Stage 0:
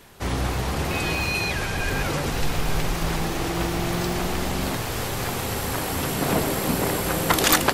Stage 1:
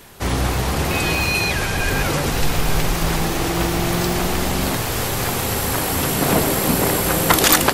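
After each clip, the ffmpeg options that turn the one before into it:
-af "highshelf=f=8k:g=5,alimiter=level_in=6dB:limit=-1dB:release=50:level=0:latency=1,volume=-1dB"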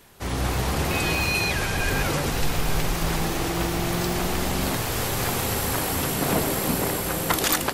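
-af "dynaudnorm=f=150:g=5:m=6.5dB,volume=-9dB"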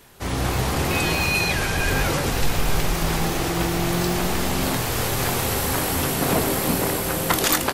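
-filter_complex "[0:a]asplit=2[a][b];[b]adelay=23,volume=-11dB[c];[a][c]amix=inputs=2:normalize=0,volume=2dB"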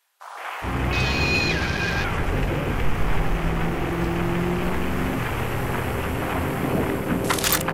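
-filter_complex "[0:a]acrossover=split=680[a][b];[a]adelay=420[c];[c][b]amix=inputs=2:normalize=0,afwtdn=0.0282"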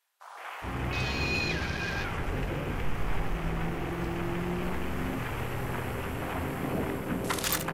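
-af "aecho=1:1:73:0.2,volume=-8.5dB"

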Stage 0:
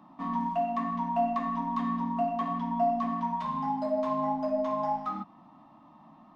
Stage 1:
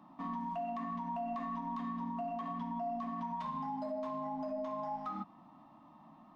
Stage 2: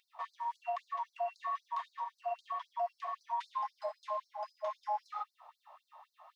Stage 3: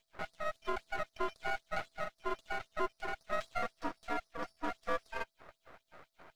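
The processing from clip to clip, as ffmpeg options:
-af "alimiter=level_in=4dB:limit=-24dB:level=0:latency=1:release=91,volume=-4dB,volume=-3.5dB"
-af "afftfilt=real='re*gte(b*sr/1024,460*pow(4100/460,0.5+0.5*sin(2*PI*3.8*pts/sr)))':imag='im*gte(b*sr/1024,460*pow(4100/460,0.5+0.5*sin(2*PI*3.8*pts/sr)))':win_size=1024:overlap=0.75,volume=6dB"
-af "aeval=exprs='val(0)*sin(2*PI*330*n/s)':c=same,aeval=exprs='max(val(0),0)':c=same,volume=7dB"

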